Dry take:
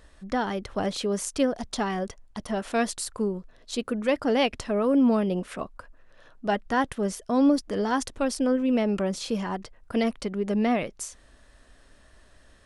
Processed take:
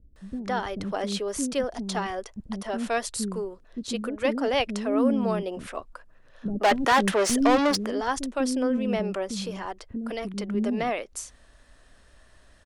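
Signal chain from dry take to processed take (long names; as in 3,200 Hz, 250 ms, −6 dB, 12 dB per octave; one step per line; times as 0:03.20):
0:06.45–0:07.70: mid-hump overdrive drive 26 dB, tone 4,300 Hz, clips at −11.5 dBFS
0:09.09–0:10.13: downward compressor 2 to 1, threshold −28 dBFS, peak gain reduction 5 dB
multiband delay without the direct sound lows, highs 160 ms, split 310 Hz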